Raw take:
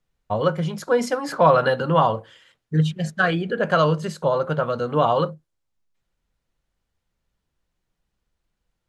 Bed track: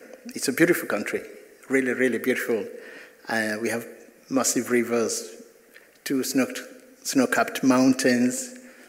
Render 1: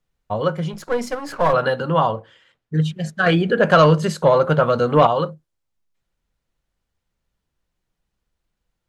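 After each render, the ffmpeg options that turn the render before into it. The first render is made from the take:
-filter_complex "[0:a]asettb=1/sr,asplit=3[a][b][c];[a]atrim=end=0.734[d];[b]atrim=start=0.73:end=1.53,asetpts=PTS-STARTPTS,afade=t=in:d=0.004:c=qsin,afade=t=out:st=0.796:d=0.004:c=qsin,aeval=exprs='if(lt(val(0),0),0.447*val(0),val(0))':c=same[e];[c]atrim=start=1.526[f];[d][e]acrossfade=d=0.004:c1=hsin:c2=qsin[g];[g][f]acrossfade=d=0.004:c1=qsin:c2=hsin,asettb=1/sr,asplit=3[h][i][j];[h]atrim=end=2.114[k];[i]atrim=start=2.11:end=2.74,asetpts=PTS-STARTPTS,afade=t=in:d=0.004:c=qsin,afade=t=out:st=0.626:d=0.004:c=qsin,lowpass=f=3.3k:p=1[l];[j]atrim=start=2.736[m];[k][l]acrossfade=d=0.004:c1=hsin:c2=qsin[n];[n][m]acrossfade=d=0.004:c1=qsin:c2=hsin,asettb=1/sr,asplit=3[o][p][q];[o]atrim=end=3.264[r];[p]atrim=start=3.26:end=5.07,asetpts=PTS-STARTPTS,afade=t=in:d=0.004:c=qsin,afade=t=out:st=1.806:d=0.004:c=qsin,acontrast=81[s];[q]atrim=start=5.066[t];[r][s]acrossfade=d=0.004:c1=hsin:c2=qsin[u];[u][t]acrossfade=d=0.004:c1=qsin:c2=hsin"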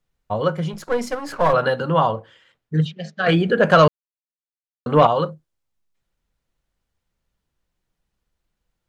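-filter_complex "[0:a]asplit=3[a][b][c];[a]afade=t=out:st=2.84:d=0.02[d];[b]highpass=f=200:w=0.5412,highpass=f=200:w=1.3066,equalizer=f=320:t=q:w=4:g=-9,equalizer=f=1k:t=q:w=4:g=-7,equalizer=f=1.5k:t=q:w=4:g=-5,lowpass=f=5.4k:w=0.5412,lowpass=f=5.4k:w=1.3066,afade=t=in:st=2.84:d=0.02,afade=t=out:st=3.27:d=0.02[e];[c]afade=t=in:st=3.27:d=0.02[f];[d][e][f]amix=inputs=3:normalize=0,asplit=3[g][h][i];[g]atrim=end=3.88,asetpts=PTS-STARTPTS,afade=t=out:st=3.876:d=0.004:c=hsin[j];[h]atrim=start=3.88:end=4.86,asetpts=PTS-STARTPTS,volume=0[k];[i]atrim=start=4.86,asetpts=PTS-STARTPTS,afade=t=in:d=0.004:c=hsin[l];[j][k][l]concat=n=3:v=0:a=1"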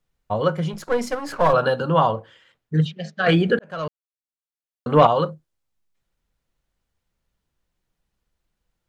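-filter_complex "[0:a]asettb=1/sr,asplit=3[a][b][c];[a]atrim=end=1.474[d];[b]atrim=start=1.47:end=1.97,asetpts=PTS-STARTPTS,afade=t=in:d=0.004:c=qsin,afade=t=out:st=0.496:d=0.004:c=qsin,equalizer=f=2k:t=o:w=0.22:g=-12.5[e];[c]atrim=start=1.966[f];[d][e]acrossfade=d=0.004:c1=hsin:c2=qsin[g];[g][f]acrossfade=d=0.004:c1=qsin:c2=hsin,asplit=2[h][i];[h]atrim=end=3.59,asetpts=PTS-STARTPTS,afade=t=out:st=3.586:d=0.004:c=hsin[j];[i]atrim=start=3.59,asetpts=PTS-STARTPTS,afade=t=in:d=1.42[k];[j][k]concat=n=2:v=0:a=1"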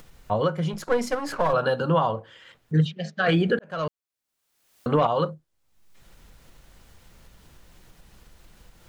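-af "alimiter=limit=-12dB:level=0:latency=1:release=258,acompressor=mode=upward:threshold=-30dB:ratio=2.5"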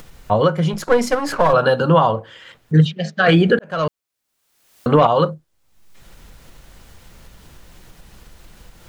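-af "volume=8dB"

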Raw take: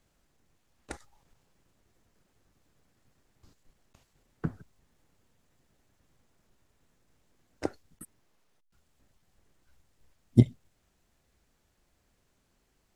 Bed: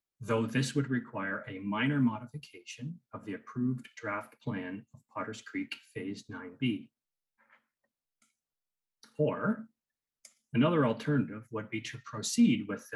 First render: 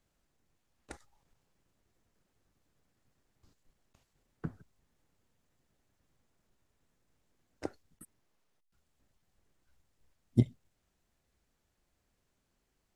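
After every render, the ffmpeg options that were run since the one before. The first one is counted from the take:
-af "volume=-6.5dB"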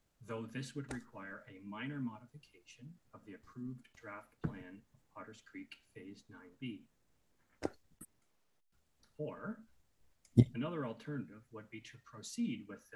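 -filter_complex "[1:a]volume=-13.5dB[a];[0:a][a]amix=inputs=2:normalize=0"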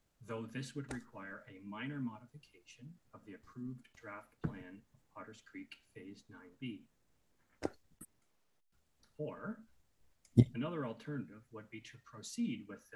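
-af anull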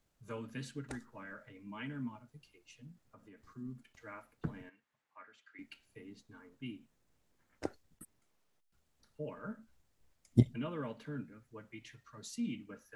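-filter_complex "[0:a]asettb=1/sr,asplit=3[a][b][c];[a]atrim=end=3.024[d];[b]atrim=start=3.02:end=3.44,asetpts=PTS-STARTPTS,afade=t=in:d=0.004:c=qsin,afade=t=out:st=0.416:d=0.004:c=qsin,acompressor=threshold=-53dB:ratio=6:attack=3.2:release=140:knee=1:detection=peak[e];[c]atrim=start=3.436[f];[d][e]acrossfade=d=0.004:c1=hsin:c2=qsin[g];[g][f]acrossfade=d=0.004:c1=qsin:c2=hsin,asettb=1/sr,asplit=3[h][i][j];[h]atrim=end=4.694[k];[i]atrim=start=4.69:end=5.59,asetpts=PTS-STARTPTS,afade=t=in:d=0.004:c=qsin,afade=t=out:st=0.896:d=0.004:c=qsin,bandpass=f=1.8k:t=q:w=0.97[l];[j]atrim=start=5.586[m];[k][l]acrossfade=d=0.004:c1=hsin:c2=qsin[n];[n][m]acrossfade=d=0.004:c1=qsin:c2=hsin"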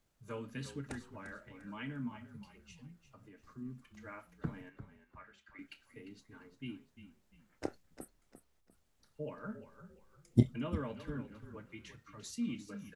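-filter_complex "[0:a]asplit=2[a][b];[b]adelay=29,volume=-14dB[c];[a][c]amix=inputs=2:normalize=0,asplit=4[d][e][f][g];[e]adelay=348,afreqshift=-36,volume=-12dB[h];[f]adelay=696,afreqshift=-72,volume=-21.6dB[i];[g]adelay=1044,afreqshift=-108,volume=-31.3dB[j];[d][h][i][j]amix=inputs=4:normalize=0"

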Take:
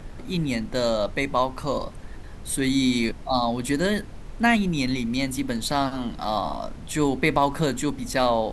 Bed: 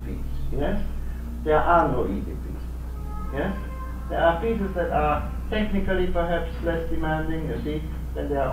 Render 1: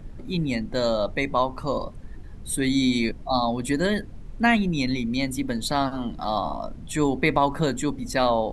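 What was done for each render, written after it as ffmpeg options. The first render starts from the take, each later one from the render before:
-af "afftdn=nr=10:nf=-39"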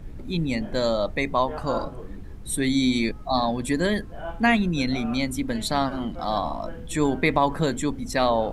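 -filter_complex "[1:a]volume=-15.5dB[a];[0:a][a]amix=inputs=2:normalize=0"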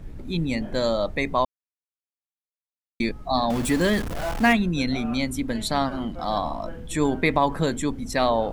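-filter_complex "[0:a]asettb=1/sr,asplit=3[a][b][c];[a]atrim=end=3.504[d];[b]atrim=start=3.5:end=4.53,asetpts=PTS-STARTPTS,afade=t=in:d=0.004:c=qsin,afade=t=out:st=1.026:d=0.004:c=qsin,aeval=exprs='val(0)+0.5*0.0473*sgn(val(0))':c=same[e];[c]atrim=start=4.526[f];[d][e]acrossfade=d=0.004:c1=hsin:c2=qsin[g];[g][f]acrossfade=d=0.004:c1=qsin:c2=hsin,asplit=3[h][i][j];[h]atrim=end=1.45,asetpts=PTS-STARTPTS,afade=t=out:st=1.446:d=0.004:c=hsin[k];[i]atrim=start=1.45:end=3,asetpts=PTS-STARTPTS,volume=0[l];[j]atrim=start=3,asetpts=PTS-STARTPTS,afade=t=in:d=0.004:c=hsin[m];[k][l][m]concat=n=3:v=0:a=1"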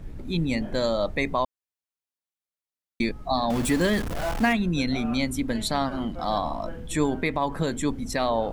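-af "alimiter=limit=-13dB:level=0:latency=1:release=230"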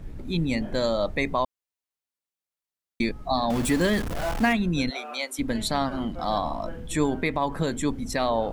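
-filter_complex "[0:a]asplit=3[a][b][c];[a]afade=t=out:st=4.89:d=0.02[d];[b]highpass=f=470:w=0.5412,highpass=f=470:w=1.3066,afade=t=in:st=4.89:d=0.02,afade=t=out:st=5.38:d=0.02[e];[c]afade=t=in:st=5.38:d=0.02[f];[d][e][f]amix=inputs=3:normalize=0"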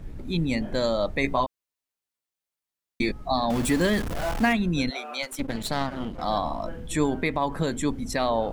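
-filter_complex "[0:a]asettb=1/sr,asplit=3[a][b][c];[a]atrim=end=1.224[d];[b]atrim=start=1.22:end=3.12,asetpts=PTS-STARTPTS,afade=t=in:d=0.004:c=qsin,afade=t=out:st=1.896:d=0.004:c=qsin,asplit=2[e][f];[f]adelay=15,volume=-4dB[g];[e][g]amix=inputs=2:normalize=0,atrim=end_sample=83790[h];[c]atrim=start=3.116[i];[d][h]acrossfade=d=0.004:c1=hsin:c2=qsin[j];[j][i]acrossfade=d=0.004:c1=qsin:c2=hsin,asplit=3[k][l][m];[k]afade=t=out:st=5.22:d=0.02[n];[l]aeval=exprs='clip(val(0),-1,0.015)':c=same,afade=t=in:st=5.22:d=0.02,afade=t=out:st=6.21:d=0.02[o];[m]afade=t=in:st=6.21:d=0.02[p];[n][o][p]amix=inputs=3:normalize=0"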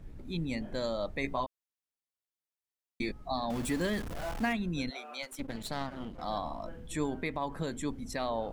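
-af "volume=-9dB"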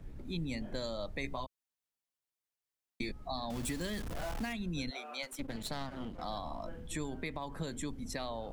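-filter_complex "[0:a]acrossover=split=130|3000[a][b][c];[b]acompressor=threshold=-37dB:ratio=6[d];[a][d][c]amix=inputs=3:normalize=0"

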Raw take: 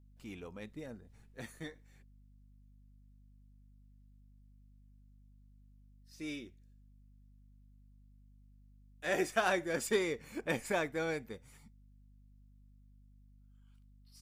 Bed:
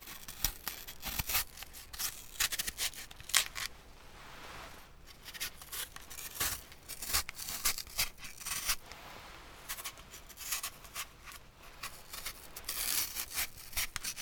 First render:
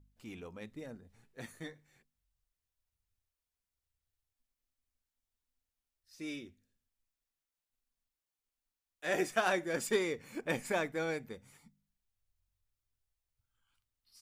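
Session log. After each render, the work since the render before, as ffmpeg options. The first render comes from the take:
-af "bandreject=f=50:t=h:w=4,bandreject=f=100:t=h:w=4,bandreject=f=150:t=h:w=4,bandreject=f=200:t=h:w=4,bandreject=f=250:t=h:w=4"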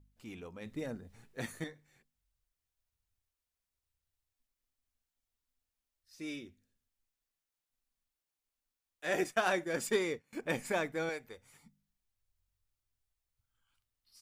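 -filter_complex "[0:a]asettb=1/sr,asplit=3[a][b][c];[a]atrim=end=9.244[d];[b]atrim=start=9.24:end=10.33,asetpts=PTS-STARTPTS,afade=t=in:d=0.004:c=qsin,afade=t=out:st=1.086:d=0.004:c=qsin,agate=range=-33dB:threshold=-42dB:ratio=3:release=100:detection=peak[e];[c]atrim=start=10.326[f];[d][e]acrossfade=d=0.004:c1=hsin:c2=qsin[g];[g][f]acrossfade=d=0.004:c1=qsin:c2=hsin,asettb=1/sr,asplit=3[h][i][j];[h]atrim=end=11.094[k];[i]atrim=start=11.09:end=11.54,asetpts=PTS-STARTPTS,afade=t=in:d=0.004:c=qsin,afade=t=out:st=0.446:d=0.004:c=qsin,equalizer=f=180:t=o:w=1.5:g=-14[l];[j]atrim=start=11.536[m];[k][l]acrossfade=d=0.004:c1=hsin:c2=qsin[n];[n][m]acrossfade=d=0.004:c1=qsin:c2=hsin,asplit=3[o][p][q];[o]atrim=end=0.662[r];[p]atrim=start=0.658:end=1.642,asetpts=PTS-STARTPTS,volume=6.5dB[s];[q]atrim=start=1.638[t];[r][s]acrossfade=d=0.004:c1=hsin:c2=hsin[u];[u][t]acrossfade=d=0.004:c1=hsin:c2=hsin"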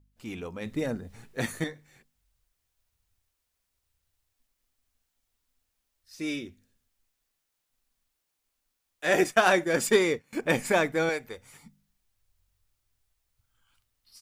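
-af "dynaudnorm=f=130:g=3:m=9.5dB"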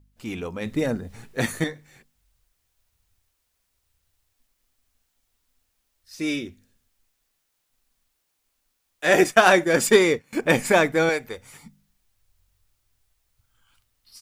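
-af "volume=6dB"

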